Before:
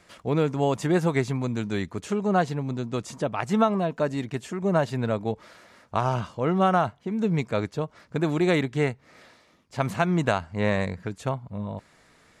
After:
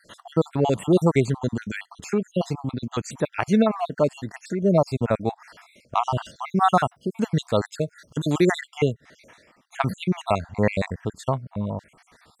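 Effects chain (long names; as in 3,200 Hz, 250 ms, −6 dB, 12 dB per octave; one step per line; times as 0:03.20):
time-frequency cells dropped at random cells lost 56%
0:06.25–0:08.52: high-shelf EQ 4,200 Hz +9.5 dB
level +5 dB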